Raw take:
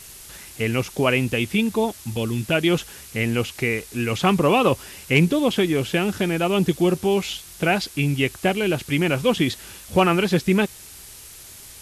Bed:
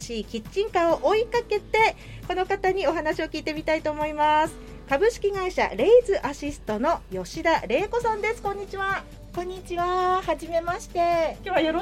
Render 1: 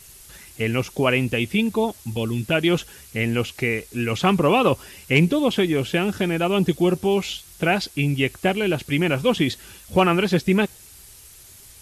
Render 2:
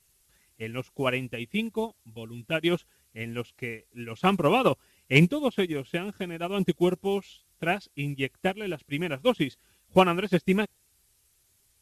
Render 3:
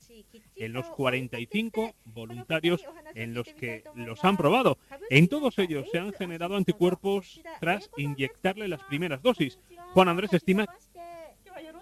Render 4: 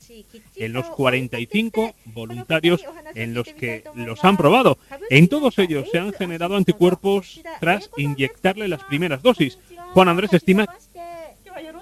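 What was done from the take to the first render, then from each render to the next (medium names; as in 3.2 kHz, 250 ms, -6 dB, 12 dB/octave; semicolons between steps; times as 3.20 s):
noise reduction 6 dB, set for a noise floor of -43 dBFS
upward expansion 2.5:1, over -27 dBFS
add bed -22 dB
trim +8.5 dB; peak limiter -1 dBFS, peak gain reduction 3 dB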